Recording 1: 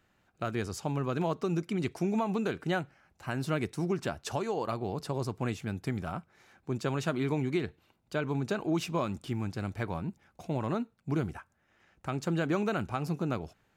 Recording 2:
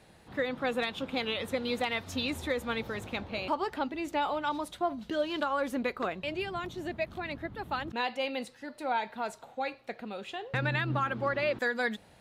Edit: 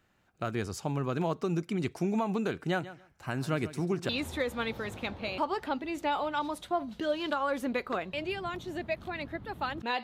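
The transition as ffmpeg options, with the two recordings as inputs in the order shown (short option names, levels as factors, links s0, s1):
-filter_complex "[0:a]asettb=1/sr,asplit=3[s0][s1][s2];[s0]atrim=end=2.624[s3];[s1]atrim=start=2.62:end=4.09,asetpts=PTS-STARTPTS,afade=t=in:d=0.004:c=qsin,afade=t=out:st=1.466:d=0.004:c=qsin,aecho=1:1:140|280:0.178|0.032,atrim=end_sample=64827[s4];[s2]atrim=start=4.086[s5];[s3][s4]acrossfade=d=0.004:c1=hsin:c2=qsin[s6];[s6][s5]acrossfade=d=0.004:c1=qsin:c2=hsin,apad=whole_dur=10.03,atrim=end=10.03,atrim=end=4.092[s7];[1:a]atrim=start=2.188:end=8.13[s8];[s7][s8]acrossfade=d=0.004:c1=hsin:c2=hsin"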